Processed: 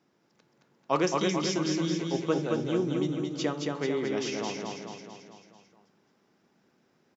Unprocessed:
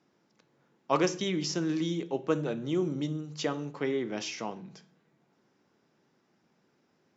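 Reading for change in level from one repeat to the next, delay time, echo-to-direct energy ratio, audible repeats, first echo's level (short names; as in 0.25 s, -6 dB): -5.0 dB, 0.22 s, -1.5 dB, 6, -3.0 dB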